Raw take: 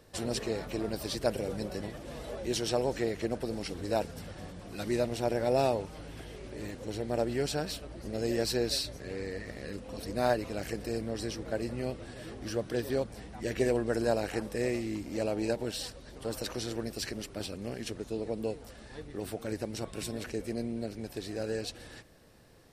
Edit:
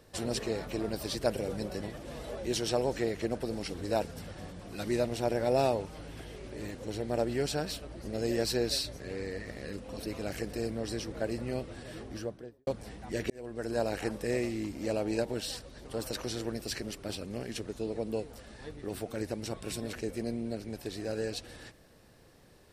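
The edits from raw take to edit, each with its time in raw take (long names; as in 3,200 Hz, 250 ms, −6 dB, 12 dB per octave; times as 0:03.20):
0:10.06–0:10.37: remove
0:12.27–0:12.98: fade out and dull
0:13.61–0:14.27: fade in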